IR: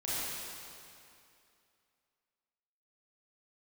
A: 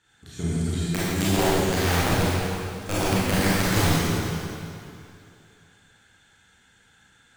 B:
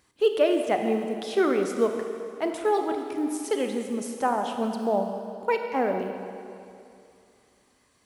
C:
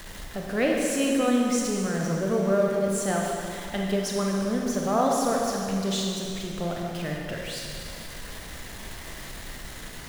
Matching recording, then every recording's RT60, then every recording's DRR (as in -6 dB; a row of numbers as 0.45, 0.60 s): A; 2.6, 2.5, 2.6 s; -10.5, 4.5, -1.5 dB